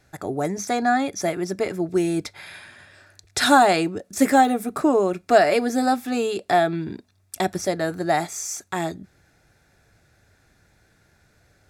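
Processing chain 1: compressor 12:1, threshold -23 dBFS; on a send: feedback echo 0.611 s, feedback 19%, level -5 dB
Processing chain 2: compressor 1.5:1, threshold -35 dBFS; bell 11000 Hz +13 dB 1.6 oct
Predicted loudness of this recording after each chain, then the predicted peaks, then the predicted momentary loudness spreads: -28.0, -27.0 LUFS; -10.5, -2.5 dBFS; 8, 14 LU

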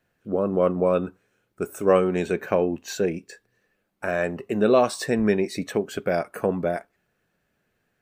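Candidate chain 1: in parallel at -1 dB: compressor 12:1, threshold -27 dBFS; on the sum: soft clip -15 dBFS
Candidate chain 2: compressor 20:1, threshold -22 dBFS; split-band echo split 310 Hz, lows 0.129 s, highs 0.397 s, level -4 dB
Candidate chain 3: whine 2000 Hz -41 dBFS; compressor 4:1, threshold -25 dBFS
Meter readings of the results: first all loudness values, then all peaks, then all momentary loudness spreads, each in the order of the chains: -25.0, -28.5, -30.5 LUFS; -15.0, -9.5, -11.5 dBFS; 10, 10, 13 LU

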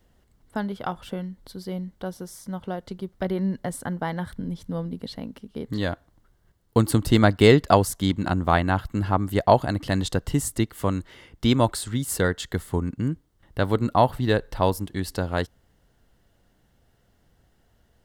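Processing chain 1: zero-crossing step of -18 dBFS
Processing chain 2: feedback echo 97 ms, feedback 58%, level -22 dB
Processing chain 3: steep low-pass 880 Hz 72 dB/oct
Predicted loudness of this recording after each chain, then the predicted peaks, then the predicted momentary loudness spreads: -20.5, -24.5, -25.5 LUFS; -1.0, -2.0, -4.5 dBFS; 8, 15, 15 LU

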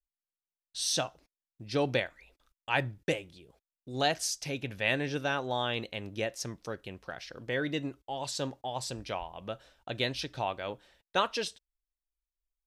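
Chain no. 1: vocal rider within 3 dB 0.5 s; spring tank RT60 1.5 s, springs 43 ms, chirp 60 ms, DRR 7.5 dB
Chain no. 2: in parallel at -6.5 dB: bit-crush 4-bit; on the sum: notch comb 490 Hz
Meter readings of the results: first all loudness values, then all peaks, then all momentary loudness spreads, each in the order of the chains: -34.0, -32.5 LUFS; -13.5, -10.5 dBFS; 14, 15 LU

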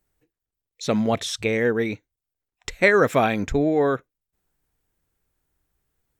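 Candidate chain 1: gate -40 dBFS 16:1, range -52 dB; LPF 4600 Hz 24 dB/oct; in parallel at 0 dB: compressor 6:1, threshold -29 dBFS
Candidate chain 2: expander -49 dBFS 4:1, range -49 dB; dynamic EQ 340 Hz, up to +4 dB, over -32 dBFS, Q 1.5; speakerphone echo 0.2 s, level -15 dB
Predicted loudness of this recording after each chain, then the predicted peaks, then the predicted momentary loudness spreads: -20.0, -20.0 LUFS; -1.5, -2.0 dBFS; 13, 18 LU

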